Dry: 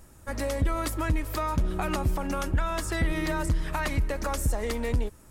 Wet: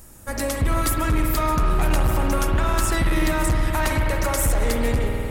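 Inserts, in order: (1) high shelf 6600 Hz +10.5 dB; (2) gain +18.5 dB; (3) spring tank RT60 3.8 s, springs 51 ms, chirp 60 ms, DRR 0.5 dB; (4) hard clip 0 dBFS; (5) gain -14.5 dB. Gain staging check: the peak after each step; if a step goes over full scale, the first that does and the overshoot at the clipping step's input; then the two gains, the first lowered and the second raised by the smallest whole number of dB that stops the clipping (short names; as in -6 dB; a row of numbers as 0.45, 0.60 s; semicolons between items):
-13.5, +5.0, +8.0, 0.0, -14.5 dBFS; step 2, 8.0 dB; step 2 +10.5 dB, step 5 -6.5 dB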